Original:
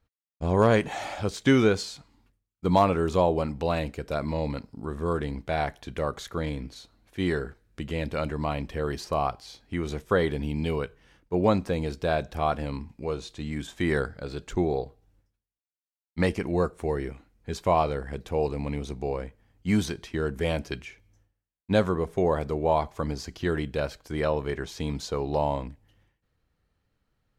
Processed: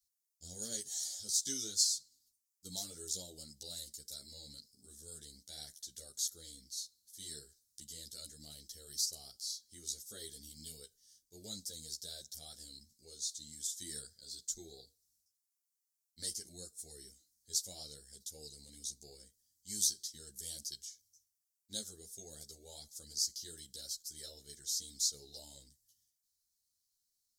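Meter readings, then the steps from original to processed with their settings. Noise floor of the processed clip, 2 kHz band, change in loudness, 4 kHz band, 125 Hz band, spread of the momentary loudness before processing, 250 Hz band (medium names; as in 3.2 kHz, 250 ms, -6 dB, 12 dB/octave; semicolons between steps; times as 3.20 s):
under -85 dBFS, -31.0 dB, -12.0 dB, -1.0 dB, -29.5 dB, 12 LU, -28.5 dB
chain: inverse Chebyshev high-pass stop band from 2.7 kHz, stop band 40 dB; three-phase chorus; trim +14 dB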